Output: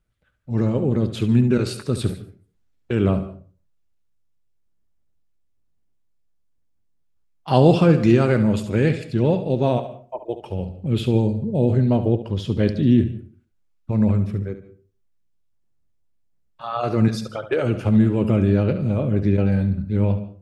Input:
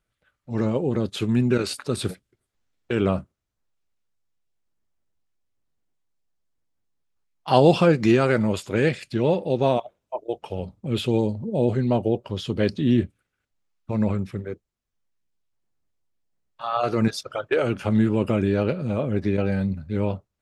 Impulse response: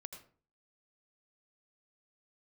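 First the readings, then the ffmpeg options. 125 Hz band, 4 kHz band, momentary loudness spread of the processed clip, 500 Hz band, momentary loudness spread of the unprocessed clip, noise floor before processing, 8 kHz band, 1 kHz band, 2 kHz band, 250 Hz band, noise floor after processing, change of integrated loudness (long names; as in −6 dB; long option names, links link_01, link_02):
+6.5 dB, −2.0 dB, 13 LU, +0.5 dB, 13 LU, −81 dBFS, can't be measured, −1.0 dB, −2.0 dB, +3.5 dB, −64 dBFS, +3.0 dB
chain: -filter_complex "[0:a]lowshelf=frequency=260:gain=10.5,asplit=2[link_01][link_02];[1:a]atrim=start_sample=2205,asetrate=48510,aresample=44100,adelay=70[link_03];[link_02][link_03]afir=irnorm=-1:irlink=0,volume=-4.5dB[link_04];[link_01][link_04]amix=inputs=2:normalize=0,volume=-2.5dB"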